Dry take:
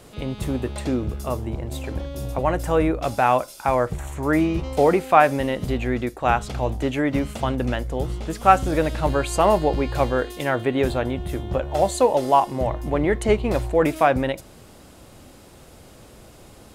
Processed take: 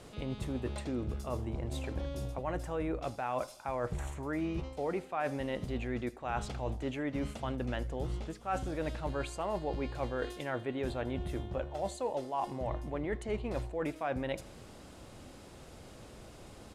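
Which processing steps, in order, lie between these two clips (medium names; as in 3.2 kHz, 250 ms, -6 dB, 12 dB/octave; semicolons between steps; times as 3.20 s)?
Bessel low-pass 8.4 kHz, order 2; reverse; compression 6:1, threshold -28 dBFS, peak gain reduction 18.5 dB; reverse; feedback delay 81 ms, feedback 57%, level -23 dB; trim -4.5 dB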